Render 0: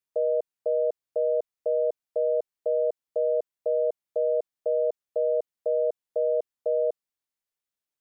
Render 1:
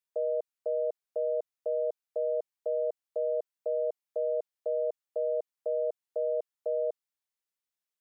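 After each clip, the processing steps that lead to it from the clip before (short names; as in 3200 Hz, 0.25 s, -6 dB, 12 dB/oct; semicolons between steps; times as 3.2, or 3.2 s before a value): low shelf 380 Hz -10 dB; gain -2 dB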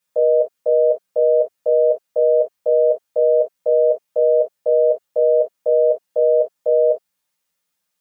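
reverb, pre-delay 3 ms, DRR -5.5 dB; gain +8.5 dB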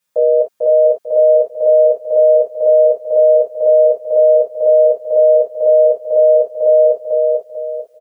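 feedback echo 0.445 s, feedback 36%, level -3 dB; gain +3 dB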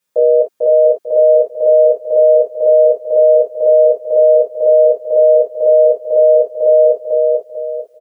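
bell 350 Hz +8.5 dB 0.78 oct; gain -1 dB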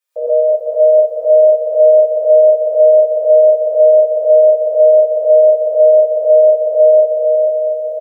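HPF 490 Hz 24 dB/oct; echo 1.182 s -9 dB; non-linear reverb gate 0.15 s rising, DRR -7 dB; gain -7 dB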